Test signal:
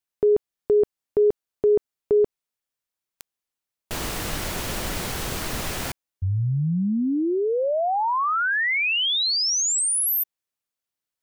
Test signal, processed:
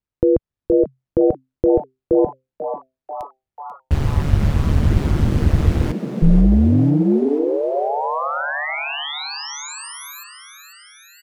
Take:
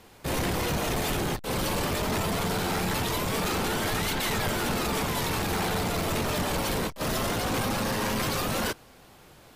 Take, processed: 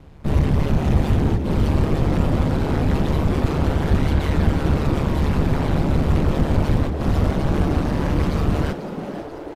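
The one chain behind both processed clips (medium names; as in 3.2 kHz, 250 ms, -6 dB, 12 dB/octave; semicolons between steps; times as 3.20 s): RIAA curve playback; ring modulator 73 Hz; frequency-shifting echo 490 ms, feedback 62%, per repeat +130 Hz, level -12 dB; trim +2.5 dB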